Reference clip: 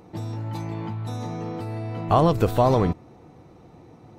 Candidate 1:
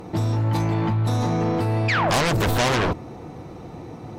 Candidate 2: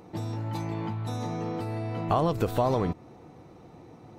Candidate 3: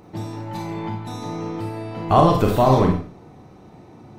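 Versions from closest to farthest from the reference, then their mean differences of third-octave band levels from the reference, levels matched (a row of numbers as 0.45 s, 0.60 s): 3, 2, 1; 2.5 dB, 3.5 dB, 7.0 dB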